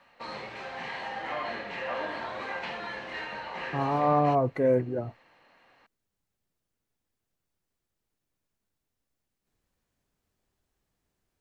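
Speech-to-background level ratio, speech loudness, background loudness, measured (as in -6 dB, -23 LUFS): 10.0 dB, -26.0 LUFS, -36.0 LUFS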